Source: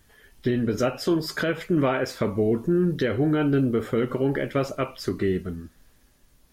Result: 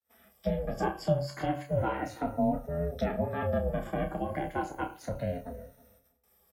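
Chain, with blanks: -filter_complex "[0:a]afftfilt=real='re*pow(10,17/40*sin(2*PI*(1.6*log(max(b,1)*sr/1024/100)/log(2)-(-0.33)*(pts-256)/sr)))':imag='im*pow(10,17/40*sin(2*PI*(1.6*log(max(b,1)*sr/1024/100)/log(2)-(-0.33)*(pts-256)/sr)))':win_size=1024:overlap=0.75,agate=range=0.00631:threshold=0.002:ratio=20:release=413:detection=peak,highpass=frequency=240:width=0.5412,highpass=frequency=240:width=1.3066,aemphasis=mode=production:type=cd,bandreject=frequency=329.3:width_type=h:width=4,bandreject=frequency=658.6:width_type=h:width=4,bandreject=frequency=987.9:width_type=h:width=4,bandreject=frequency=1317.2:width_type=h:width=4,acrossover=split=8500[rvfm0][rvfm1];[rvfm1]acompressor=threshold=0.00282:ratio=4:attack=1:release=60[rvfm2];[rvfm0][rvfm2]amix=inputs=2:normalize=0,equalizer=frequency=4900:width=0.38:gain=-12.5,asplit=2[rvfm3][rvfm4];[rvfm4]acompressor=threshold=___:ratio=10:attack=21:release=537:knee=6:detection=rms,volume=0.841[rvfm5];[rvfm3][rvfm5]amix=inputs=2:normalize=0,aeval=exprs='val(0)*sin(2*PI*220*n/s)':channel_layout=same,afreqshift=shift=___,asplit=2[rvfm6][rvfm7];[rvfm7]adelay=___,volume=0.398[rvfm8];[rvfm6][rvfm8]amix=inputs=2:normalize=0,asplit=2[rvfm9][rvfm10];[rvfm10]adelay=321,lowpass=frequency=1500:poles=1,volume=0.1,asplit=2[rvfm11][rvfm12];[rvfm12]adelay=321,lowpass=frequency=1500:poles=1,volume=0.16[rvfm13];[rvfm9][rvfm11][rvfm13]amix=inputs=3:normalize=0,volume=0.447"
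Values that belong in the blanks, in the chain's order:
0.0355, 28, 30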